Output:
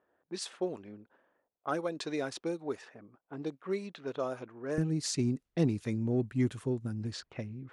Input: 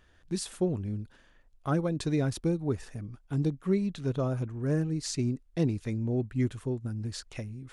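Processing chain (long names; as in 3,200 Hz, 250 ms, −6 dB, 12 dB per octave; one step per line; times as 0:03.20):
high-pass filter 450 Hz 12 dB per octave, from 0:04.78 120 Hz
low-pass that shuts in the quiet parts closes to 740 Hz, open at −30.5 dBFS
harmonic generator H 5 −35 dB, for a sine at −17 dBFS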